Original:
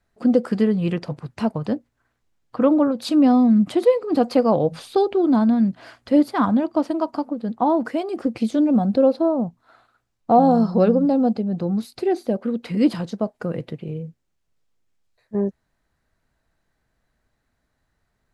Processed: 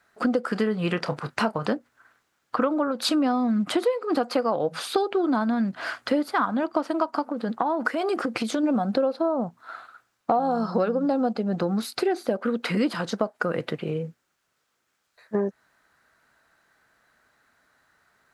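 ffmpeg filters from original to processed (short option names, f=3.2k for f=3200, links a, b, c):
-filter_complex "[0:a]asettb=1/sr,asplit=3[a][b][c];[a]atrim=end=0.534[d];[b]atrim=start=0.53:end=1.73,asetpts=PTS-STARTPTS,afade=t=in:d=0.004:c=qsin,afade=t=out:st=1.196:d=0.004:c=qsin,asplit=2[e][f];[f]adelay=28,volume=-13dB[g];[e][g]amix=inputs=2:normalize=0,atrim=end_sample=52920[h];[c]atrim=start=1.726[i];[d][h]acrossfade=d=0.004:c1=hsin:c2=qsin[j];[j][i]acrossfade=d=0.004:c1=qsin:c2=hsin,asplit=3[k][l][m];[k]afade=t=out:st=7.3:d=0.02[n];[l]acompressor=threshold=-24dB:ratio=6:attack=3.2:release=140:knee=1:detection=peak,afade=t=in:st=7.3:d=0.02,afade=t=out:st=8.63:d=0.02[o];[m]afade=t=in:st=8.63:d=0.02[p];[n][o][p]amix=inputs=3:normalize=0,highpass=f=510:p=1,equalizer=f=1.4k:t=o:w=0.68:g=8,acompressor=threshold=-30dB:ratio=6,volume=9dB"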